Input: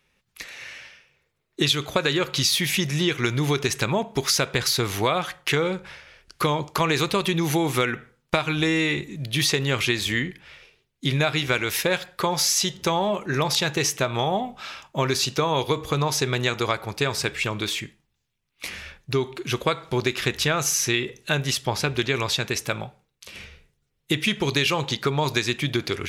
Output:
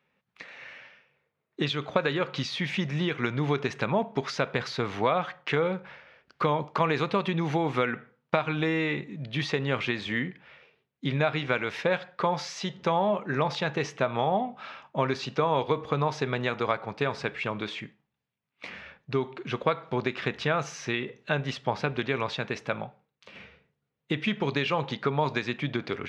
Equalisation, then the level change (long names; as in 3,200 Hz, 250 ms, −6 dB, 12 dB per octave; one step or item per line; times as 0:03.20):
high-pass filter 190 Hz 12 dB per octave
head-to-tape spacing loss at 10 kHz 36 dB
parametric band 350 Hz −7.5 dB 0.49 octaves
+2.0 dB